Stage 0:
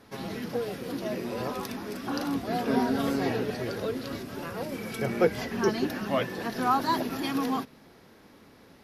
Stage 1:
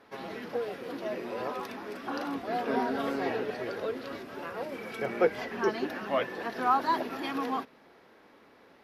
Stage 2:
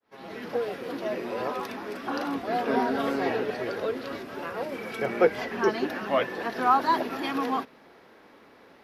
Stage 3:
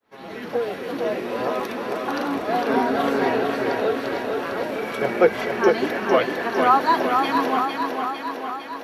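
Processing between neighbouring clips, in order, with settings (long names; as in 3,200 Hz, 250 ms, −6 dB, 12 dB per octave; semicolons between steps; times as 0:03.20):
bass and treble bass −14 dB, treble −12 dB
fade in at the beginning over 0.50 s; level +4 dB
notch filter 5,000 Hz, Q 13; on a send: feedback echo with a high-pass in the loop 454 ms, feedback 66%, high-pass 150 Hz, level −4.5 dB; on the sum: level +4.5 dB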